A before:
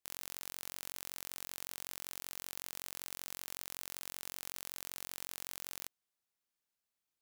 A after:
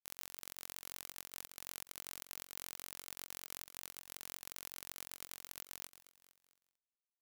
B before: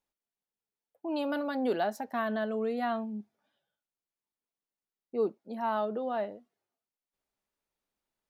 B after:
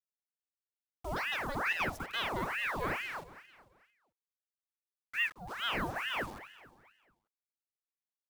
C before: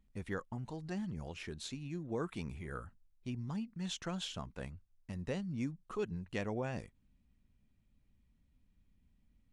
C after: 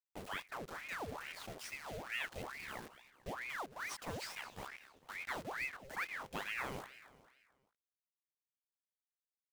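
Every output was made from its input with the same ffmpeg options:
-filter_complex "[0:a]bandreject=f=50:t=h:w=6,bandreject=f=100:t=h:w=6,bandreject=f=150:t=h:w=6,bandreject=f=200:t=h:w=6,acrusher=bits=7:mix=0:aa=0.000001,asplit=2[s0][s1];[s1]aecho=0:1:222|444|666|888:0.178|0.08|0.036|0.0162[s2];[s0][s2]amix=inputs=2:normalize=0,aeval=exprs='val(0)*sin(2*PI*1300*n/s+1300*0.8/2.3*sin(2*PI*2.3*n/s))':c=same,volume=0.891"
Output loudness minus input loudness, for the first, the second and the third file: -4.0 LU, -2.0 LU, -2.0 LU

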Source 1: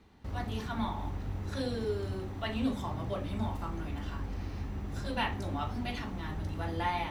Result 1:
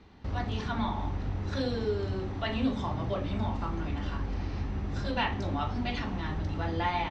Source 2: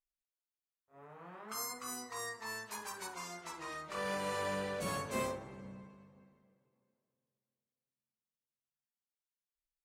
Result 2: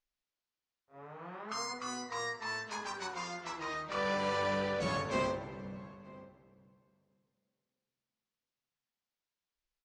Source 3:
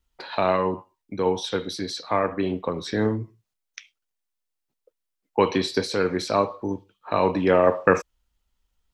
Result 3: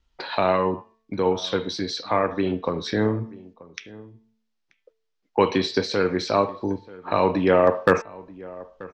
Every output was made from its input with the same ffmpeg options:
-filter_complex "[0:a]lowpass=f=5900:w=0.5412,lowpass=f=5900:w=1.3066,bandreject=f=222:t=h:w=4,bandreject=f=444:t=h:w=4,bandreject=f=666:t=h:w=4,bandreject=f=888:t=h:w=4,bandreject=f=1110:t=h:w=4,bandreject=f=1332:t=h:w=4,bandreject=f=1554:t=h:w=4,bandreject=f=1776:t=h:w=4,bandreject=f=1998:t=h:w=4,bandreject=f=2220:t=h:w=4,bandreject=f=2442:t=h:w=4,bandreject=f=2664:t=h:w=4,bandreject=f=2886:t=h:w=4,bandreject=f=3108:t=h:w=4,bandreject=f=3330:t=h:w=4,bandreject=f=3552:t=h:w=4,bandreject=f=3774:t=h:w=4,asplit=2[s0][s1];[s1]acompressor=threshold=0.0178:ratio=6,volume=0.841[s2];[s0][s2]amix=inputs=2:normalize=0,asoftclip=type=hard:threshold=0.531,asplit=2[s3][s4];[s4]adelay=932.9,volume=0.1,highshelf=f=4000:g=-21[s5];[s3][s5]amix=inputs=2:normalize=0"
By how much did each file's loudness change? +3.5 LU, +3.5 LU, +1.0 LU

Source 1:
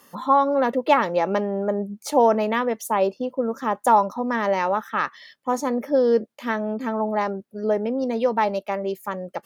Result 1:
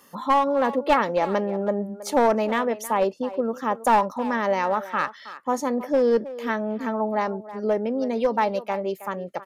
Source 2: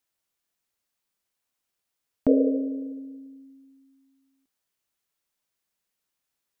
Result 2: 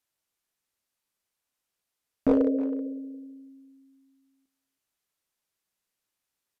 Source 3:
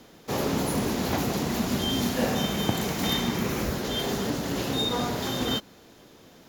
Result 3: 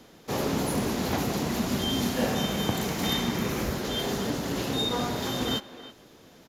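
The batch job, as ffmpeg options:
-filter_complex "[0:a]aresample=32000,aresample=44100,aeval=exprs='clip(val(0),-1,0.168)':c=same,asplit=2[s0][s1];[s1]adelay=320,highpass=300,lowpass=3400,asoftclip=type=hard:threshold=0.188,volume=0.2[s2];[s0][s2]amix=inputs=2:normalize=0,volume=0.891"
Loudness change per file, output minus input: -1.5 LU, -1.5 LU, -1.0 LU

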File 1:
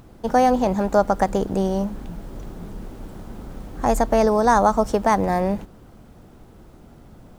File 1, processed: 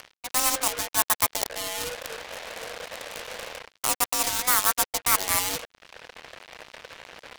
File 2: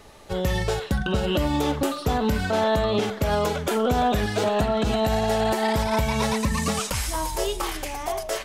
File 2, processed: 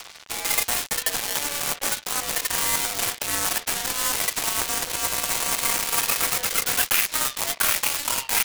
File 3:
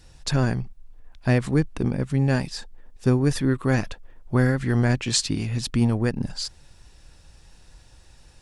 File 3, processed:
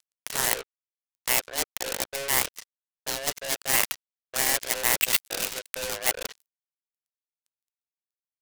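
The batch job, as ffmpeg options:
-filter_complex "[0:a]aemphasis=mode=production:type=75fm,asplit=2[s0][s1];[s1]acompressor=mode=upward:threshold=0.0708:ratio=2.5,volume=1.12[s2];[s0][s2]amix=inputs=2:normalize=0,highpass=f=180:t=q:w=0.5412,highpass=f=180:t=q:w=1.307,lowpass=f=2400:t=q:w=0.5176,lowpass=f=2400:t=q:w=0.7071,lowpass=f=2400:t=q:w=1.932,afreqshift=280,areverse,acompressor=threshold=0.0562:ratio=6,areverse,aeval=exprs='val(0)+0.002*(sin(2*PI*60*n/s)+sin(2*PI*2*60*n/s)/2+sin(2*PI*3*60*n/s)/3+sin(2*PI*4*60*n/s)/4+sin(2*PI*5*60*n/s)/5)':c=same,acrusher=bits=4:mix=0:aa=0.5,crystalizer=i=7:c=0,aeval=exprs='0.596*(cos(1*acos(clip(val(0)/0.596,-1,1)))-cos(1*PI/2))+0.00944*(cos(6*acos(clip(val(0)/0.596,-1,1)))-cos(6*PI/2))+0.133*(cos(7*acos(clip(val(0)/0.596,-1,1)))-cos(7*PI/2))':c=same"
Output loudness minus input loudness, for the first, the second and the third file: -4.0 LU, +2.0 LU, -2.0 LU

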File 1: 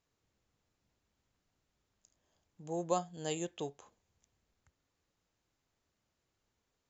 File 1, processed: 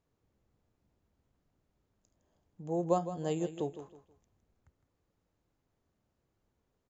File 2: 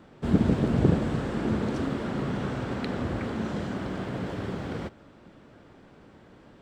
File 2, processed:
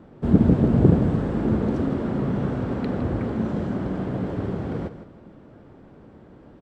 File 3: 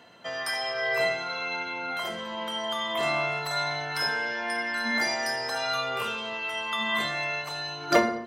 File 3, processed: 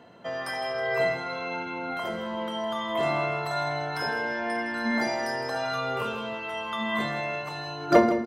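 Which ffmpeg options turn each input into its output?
-filter_complex "[0:a]tiltshelf=f=1300:g=7,asplit=2[s0][s1];[s1]aecho=0:1:160|320|480:0.251|0.0754|0.0226[s2];[s0][s2]amix=inputs=2:normalize=0,volume=0.891"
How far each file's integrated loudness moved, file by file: +4.0 LU, +5.5 LU, -0.5 LU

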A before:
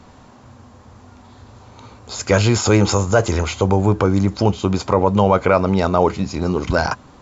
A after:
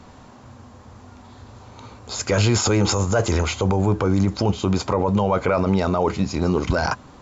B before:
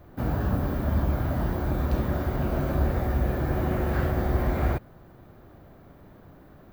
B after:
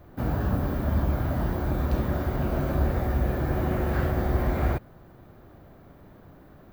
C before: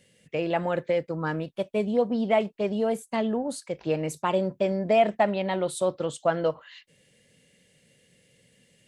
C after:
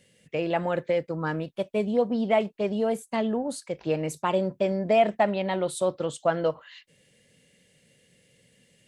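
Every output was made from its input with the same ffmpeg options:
-af "alimiter=limit=0.335:level=0:latency=1:release=14"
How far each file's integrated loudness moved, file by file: -3.5 LU, 0.0 LU, 0.0 LU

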